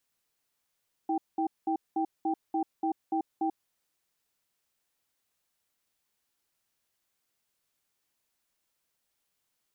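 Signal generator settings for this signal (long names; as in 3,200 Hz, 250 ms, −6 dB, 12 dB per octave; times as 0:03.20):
tone pair in a cadence 323 Hz, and 785 Hz, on 0.09 s, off 0.20 s, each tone −28.5 dBFS 2.60 s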